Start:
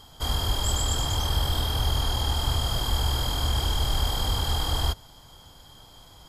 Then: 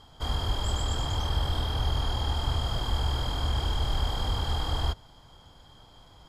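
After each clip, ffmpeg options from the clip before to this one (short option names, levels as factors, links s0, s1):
-af "aemphasis=mode=reproduction:type=50fm,volume=0.75"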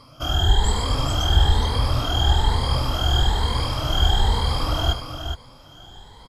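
-filter_complex "[0:a]afftfilt=real='re*pow(10,17/40*sin(2*PI*(0.94*log(max(b,1)*sr/1024/100)/log(2)-(1.1)*(pts-256)/sr)))':imag='im*pow(10,17/40*sin(2*PI*(0.94*log(max(b,1)*sr/1024/100)/log(2)-(1.1)*(pts-256)/sr)))':win_size=1024:overlap=0.75,asplit=2[s0][s1];[s1]aecho=0:1:76|417:0.237|0.422[s2];[s0][s2]amix=inputs=2:normalize=0,volume=1.68"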